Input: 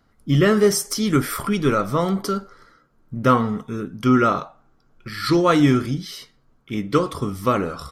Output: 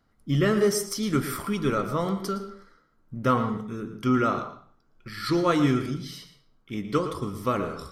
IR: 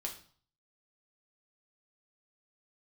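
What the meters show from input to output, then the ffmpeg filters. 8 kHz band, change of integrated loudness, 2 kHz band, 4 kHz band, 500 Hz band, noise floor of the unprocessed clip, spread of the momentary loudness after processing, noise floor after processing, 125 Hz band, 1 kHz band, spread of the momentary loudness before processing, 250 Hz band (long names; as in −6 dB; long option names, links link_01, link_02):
−6.5 dB, −6.0 dB, −6.0 dB, −6.0 dB, −6.0 dB, −60 dBFS, 14 LU, −65 dBFS, −6.0 dB, −6.0 dB, 13 LU, −6.0 dB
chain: -filter_complex "[0:a]asplit=2[link_01][link_02];[1:a]atrim=start_sample=2205,highshelf=frequency=4800:gain=-5.5,adelay=113[link_03];[link_02][link_03]afir=irnorm=-1:irlink=0,volume=-9dB[link_04];[link_01][link_04]amix=inputs=2:normalize=0,volume=-6.5dB"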